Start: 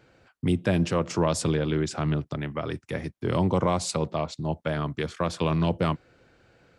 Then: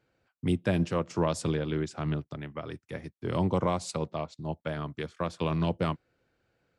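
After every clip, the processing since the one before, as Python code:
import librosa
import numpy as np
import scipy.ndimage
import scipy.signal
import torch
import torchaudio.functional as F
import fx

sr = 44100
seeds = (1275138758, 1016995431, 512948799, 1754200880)

y = fx.upward_expand(x, sr, threshold_db=-44.0, expansion=1.5)
y = y * librosa.db_to_amplitude(-2.5)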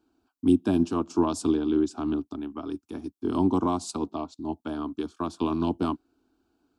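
y = fx.peak_eq(x, sr, hz=280.0, db=11.0, octaves=0.63)
y = fx.fixed_phaser(y, sr, hz=530.0, stages=6)
y = y * librosa.db_to_amplitude(3.0)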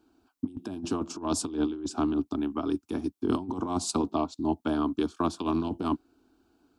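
y = fx.over_compress(x, sr, threshold_db=-28.0, ratio=-0.5)
y = y * librosa.db_to_amplitude(1.0)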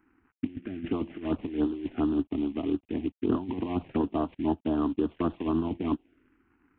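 y = fx.cvsd(x, sr, bps=16000)
y = fx.env_phaser(y, sr, low_hz=600.0, high_hz=2200.0, full_db=-24.0)
y = y * librosa.db_to_amplitude(1.5)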